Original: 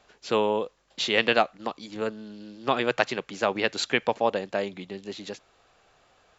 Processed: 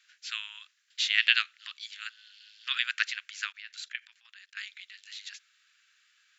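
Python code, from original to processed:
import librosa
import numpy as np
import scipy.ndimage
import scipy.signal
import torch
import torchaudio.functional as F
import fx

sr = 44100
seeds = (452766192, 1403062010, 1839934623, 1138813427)

y = fx.peak_eq(x, sr, hz=3200.0, db=6.0, octaves=0.74, at=(1.21, 2.84))
y = fx.level_steps(y, sr, step_db=20, at=(3.52, 4.57))
y = scipy.signal.sosfilt(scipy.signal.butter(8, 1500.0, 'highpass', fs=sr, output='sos'), y)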